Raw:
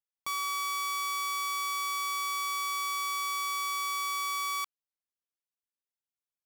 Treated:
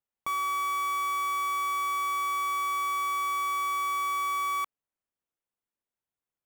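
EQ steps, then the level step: treble shelf 2.1 kHz -11 dB; peaking EQ 4.7 kHz -11 dB 0.48 oct; +7.5 dB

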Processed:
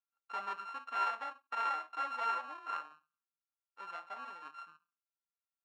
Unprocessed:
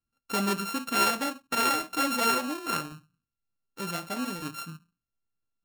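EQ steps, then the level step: ladder band-pass 1.2 kHz, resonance 35%; +2.5 dB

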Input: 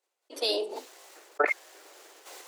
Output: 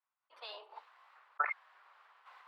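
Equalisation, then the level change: ladder high-pass 950 Hz, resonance 55%; distance through air 430 m; +2.5 dB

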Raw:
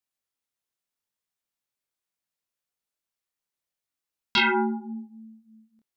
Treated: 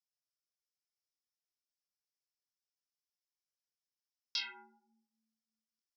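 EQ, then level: band-pass filter 5.3 kHz, Q 6.6; +1.5 dB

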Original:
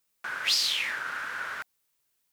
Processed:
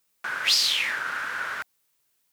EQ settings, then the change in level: high-pass 62 Hz; +4.0 dB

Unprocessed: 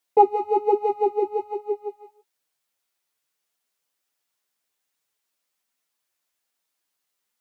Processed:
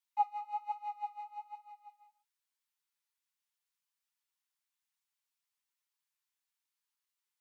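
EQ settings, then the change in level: steep high-pass 860 Hz 72 dB/octave; peaking EQ 1.2 kHz -9 dB 1.9 oct; treble shelf 2.3 kHz -11 dB; 0.0 dB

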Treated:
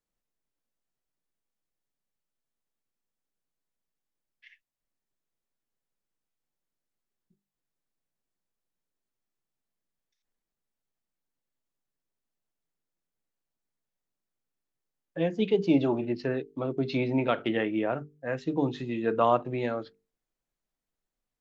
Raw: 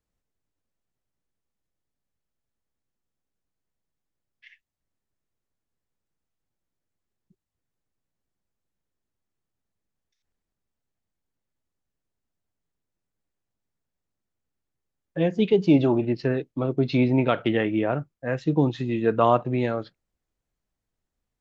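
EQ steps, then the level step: peaking EQ 73 Hz -14 dB 1.1 oct; hum notches 50/100/150 Hz; hum notches 50/100/150/200/250/300/350/400/450 Hz; -3.5 dB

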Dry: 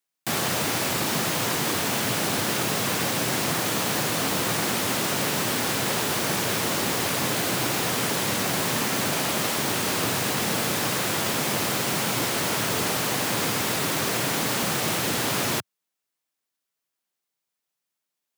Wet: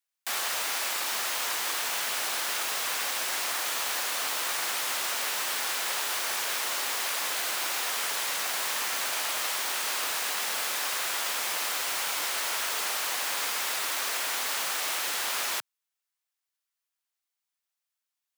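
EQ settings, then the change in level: high-pass 900 Hz 12 dB/octave; -3.0 dB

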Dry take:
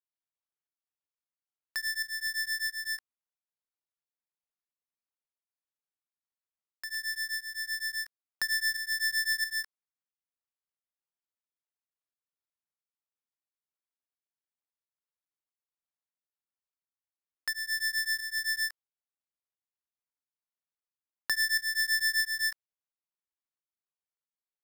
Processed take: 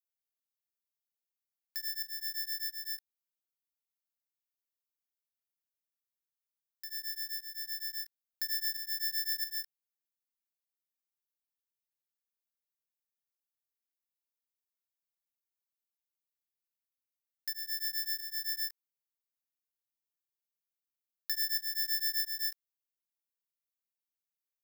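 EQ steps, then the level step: high-pass 1.4 kHz; differentiator; peaking EQ 8.7 kHz -10 dB 0.35 oct; 0.0 dB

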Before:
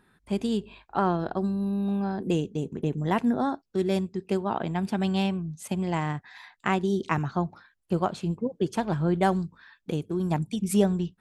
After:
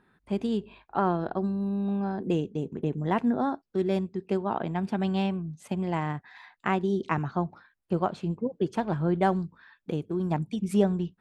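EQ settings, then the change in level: low-pass 2.3 kHz 6 dB/octave; bass shelf 110 Hz -5.5 dB; 0.0 dB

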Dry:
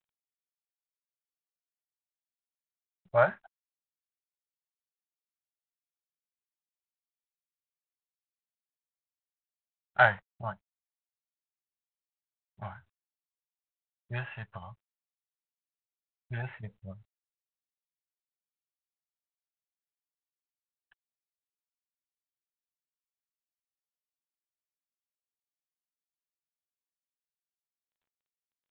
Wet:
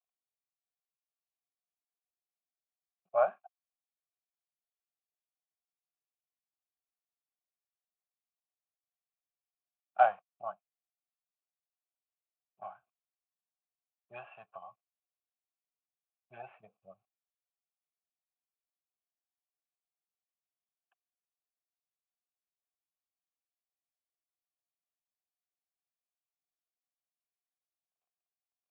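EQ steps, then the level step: vowel filter a; band-pass 170–3400 Hz; bass shelf 360 Hz +5.5 dB; +4.0 dB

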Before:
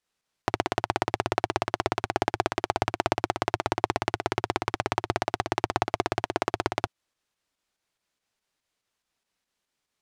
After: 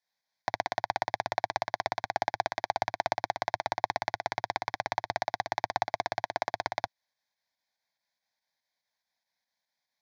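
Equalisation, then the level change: high-pass 390 Hz 6 dB/octave; treble shelf 11 kHz -3.5 dB; static phaser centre 1.9 kHz, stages 8; 0.0 dB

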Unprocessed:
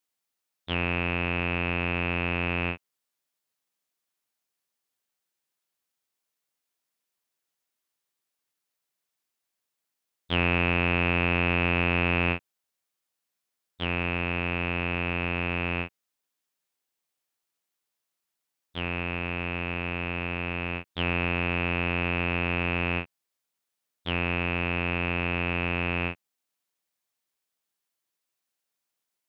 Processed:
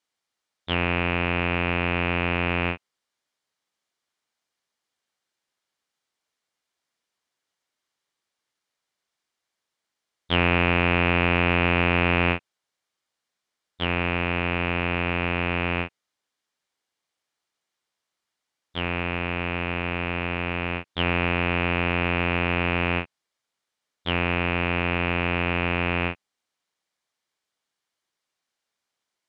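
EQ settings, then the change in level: distance through air 70 m; bass shelf 460 Hz -3.5 dB; band-stop 2.6 kHz, Q 15; +6.5 dB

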